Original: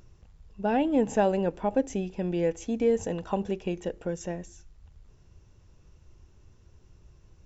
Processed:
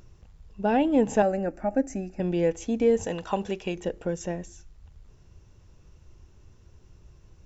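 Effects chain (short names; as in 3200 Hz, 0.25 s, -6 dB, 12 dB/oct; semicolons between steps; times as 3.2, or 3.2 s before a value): 1.22–2.2 fixed phaser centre 660 Hz, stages 8; 3.06–3.75 tilt shelf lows -4.5 dB, about 730 Hz; gain +2.5 dB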